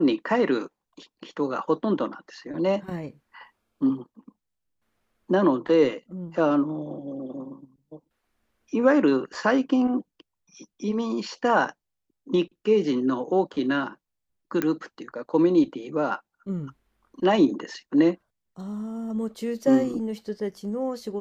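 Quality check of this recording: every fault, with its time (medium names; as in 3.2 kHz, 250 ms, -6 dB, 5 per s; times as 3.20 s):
14.62 s: pop -12 dBFS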